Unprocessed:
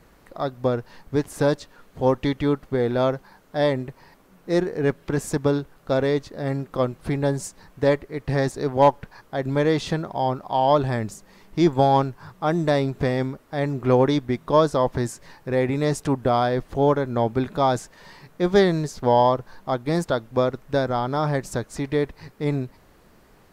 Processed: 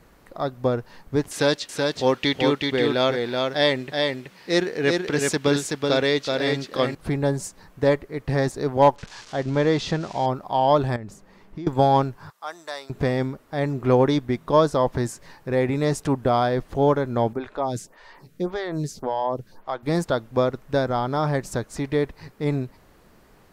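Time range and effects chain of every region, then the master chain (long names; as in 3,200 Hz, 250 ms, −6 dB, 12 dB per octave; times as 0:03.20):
0:01.31–0:06.95: meter weighting curve D + single-tap delay 377 ms −3.5 dB
0:08.96–0:10.26: spike at every zero crossing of −25.5 dBFS + low-pass filter 6,000 Hz 24 dB per octave
0:10.96–0:11.67: high-shelf EQ 3,600 Hz −10.5 dB + downward compressor 10 to 1, threshold −30 dBFS
0:12.30–0:12.90: high-pass filter 1,300 Hz + parametric band 2,400 Hz −8 dB 1.2 octaves
0:17.33–0:19.83: downward compressor 4 to 1, threshold −19 dBFS + phaser with staggered stages 1.8 Hz
whole clip: no processing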